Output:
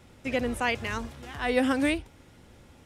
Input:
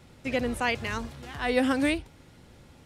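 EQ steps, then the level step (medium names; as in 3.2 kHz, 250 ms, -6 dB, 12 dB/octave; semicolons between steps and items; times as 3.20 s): peaking EQ 150 Hz -5.5 dB 0.32 oct; peaking EQ 4.3 kHz -4.5 dB 0.25 oct; 0.0 dB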